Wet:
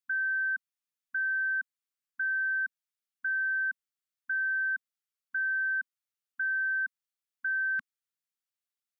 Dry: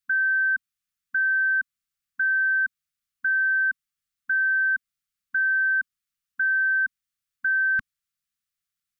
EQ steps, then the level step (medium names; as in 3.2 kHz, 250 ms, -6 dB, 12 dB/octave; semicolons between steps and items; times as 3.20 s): high-pass 230 Hz; -7.5 dB